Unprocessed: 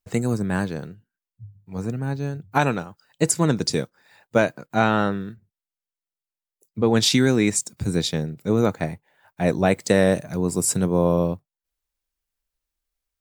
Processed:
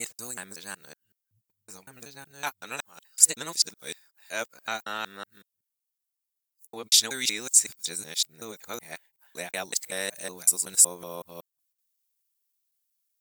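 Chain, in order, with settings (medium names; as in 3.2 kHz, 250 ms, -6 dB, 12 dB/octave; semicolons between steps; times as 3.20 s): time reversed locally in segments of 187 ms; differentiator; trim +5 dB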